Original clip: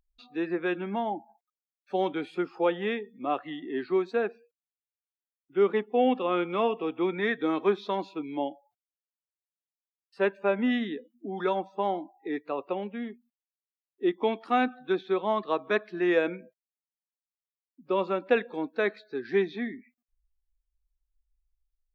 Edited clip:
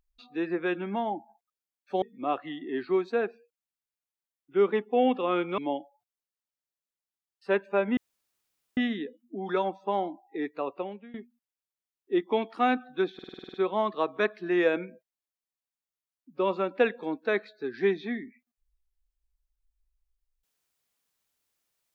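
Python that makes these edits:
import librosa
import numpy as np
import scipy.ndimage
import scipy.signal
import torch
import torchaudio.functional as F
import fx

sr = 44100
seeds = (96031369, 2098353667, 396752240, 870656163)

y = fx.edit(x, sr, fx.cut(start_s=2.02, length_s=1.01),
    fx.cut(start_s=6.59, length_s=1.7),
    fx.insert_room_tone(at_s=10.68, length_s=0.8),
    fx.fade_out_to(start_s=12.58, length_s=0.47, floor_db=-18.5),
    fx.stutter(start_s=15.05, slice_s=0.05, count=9), tone=tone)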